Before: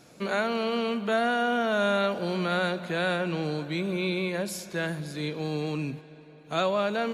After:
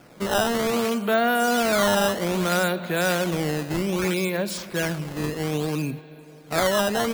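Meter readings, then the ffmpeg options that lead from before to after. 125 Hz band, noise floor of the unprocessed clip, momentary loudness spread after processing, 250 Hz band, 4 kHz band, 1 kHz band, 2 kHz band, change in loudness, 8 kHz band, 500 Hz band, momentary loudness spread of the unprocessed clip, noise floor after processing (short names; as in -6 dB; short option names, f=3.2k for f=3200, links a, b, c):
+4.5 dB, -51 dBFS, 8 LU, +4.5 dB, +5.5 dB, +4.5 dB, +4.0 dB, +4.5 dB, +13.5 dB, +4.0 dB, 7 LU, -46 dBFS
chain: -af "acrusher=samples=11:mix=1:aa=0.000001:lfo=1:lforange=17.6:lforate=0.62,volume=4.5dB"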